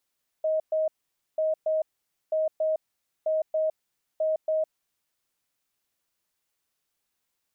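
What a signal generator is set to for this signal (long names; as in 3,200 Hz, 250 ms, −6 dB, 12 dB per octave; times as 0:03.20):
beeps in groups sine 629 Hz, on 0.16 s, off 0.12 s, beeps 2, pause 0.50 s, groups 5, −22 dBFS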